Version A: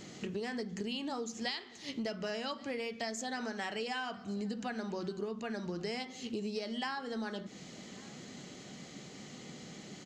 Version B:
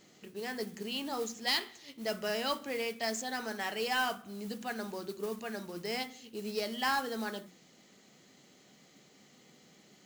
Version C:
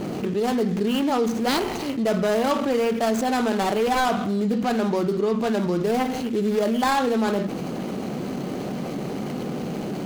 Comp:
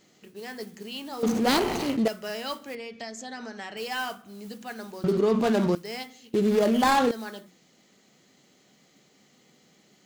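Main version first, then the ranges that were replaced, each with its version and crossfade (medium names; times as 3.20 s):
B
1.23–2.08 s: from C
2.75–3.77 s: from A
5.04–5.75 s: from C
6.34–7.11 s: from C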